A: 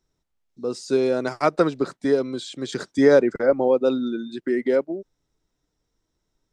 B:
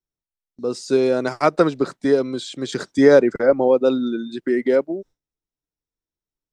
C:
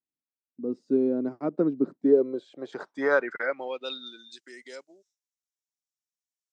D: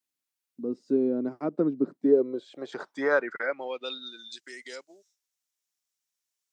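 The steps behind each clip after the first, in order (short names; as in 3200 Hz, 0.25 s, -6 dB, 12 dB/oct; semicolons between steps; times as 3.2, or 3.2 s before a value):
gate with hold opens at -44 dBFS; gain +3 dB
band-pass sweep 260 Hz -> 6700 Hz, 1.89–4.43; vocal rider within 4 dB 2 s
wow and flutter 29 cents; mismatched tape noise reduction encoder only; gain -1 dB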